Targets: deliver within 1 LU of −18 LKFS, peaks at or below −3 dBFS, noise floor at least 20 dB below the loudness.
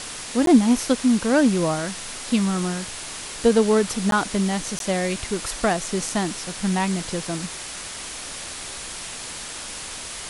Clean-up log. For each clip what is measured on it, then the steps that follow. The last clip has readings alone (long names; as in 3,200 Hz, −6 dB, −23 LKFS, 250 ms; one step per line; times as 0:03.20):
number of dropouts 3; longest dropout 12 ms; background noise floor −35 dBFS; target noise floor −44 dBFS; integrated loudness −23.5 LKFS; sample peak −5.5 dBFS; target loudness −18.0 LKFS
→ repair the gap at 0:00.46/0:04.11/0:04.79, 12 ms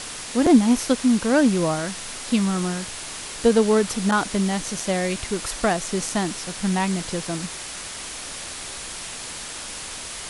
number of dropouts 0; background noise floor −35 dBFS; target noise floor −44 dBFS
→ broadband denoise 9 dB, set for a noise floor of −35 dBFS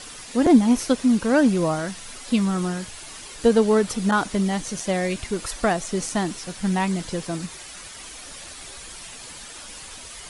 background noise floor −40 dBFS; target noise floor −43 dBFS
→ broadband denoise 6 dB, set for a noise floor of −40 dBFS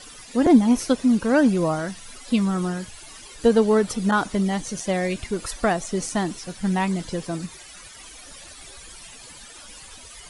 background noise floor −44 dBFS; integrated loudness −22.5 LKFS; sample peak −5.5 dBFS; target loudness −18.0 LKFS
→ level +4.5 dB
brickwall limiter −3 dBFS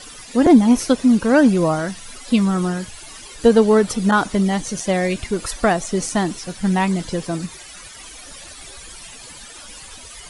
integrated loudness −18.0 LKFS; sample peak −3.0 dBFS; background noise floor −39 dBFS